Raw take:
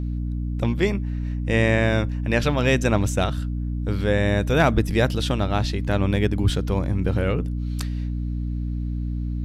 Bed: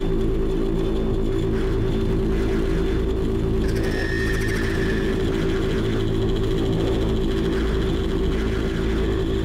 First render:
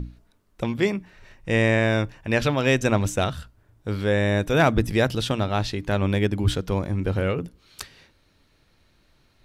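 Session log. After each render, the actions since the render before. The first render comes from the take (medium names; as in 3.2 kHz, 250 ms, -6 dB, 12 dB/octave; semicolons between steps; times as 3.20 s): hum notches 60/120/180/240/300 Hz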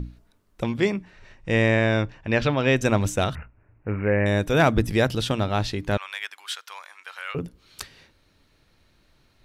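0.69–2.75 s: low-pass 10 kHz -> 4.1 kHz; 3.35–4.26 s: careless resampling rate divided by 8×, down none, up filtered; 5.97–7.35 s: high-pass 1.1 kHz 24 dB/octave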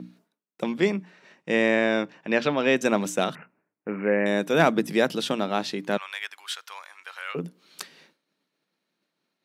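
elliptic high-pass 170 Hz, stop band 60 dB; expander -56 dBFS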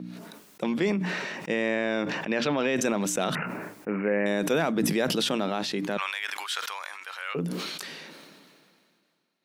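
peak limiter -15.5 dBFS, peak gain reduction 10.5 dB; decay stretcher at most 27 dB/s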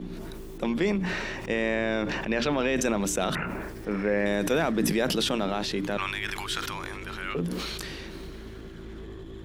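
add bed -19 dB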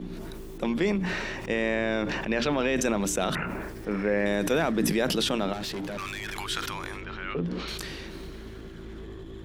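5.53–6.35 s: hard clipper -30.5 dBFS; 7.01–7.68 s: distance through air 160 m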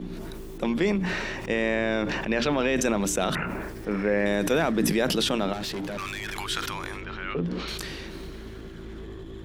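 trim +1.5 dB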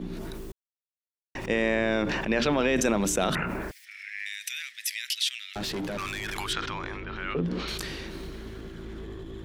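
0.52–1.35 s: mute; 3.71–5.56 s: elliptic high-pass 2 kHz, stop band 60 dB; 6.53–7.16 s: distance through air 140 m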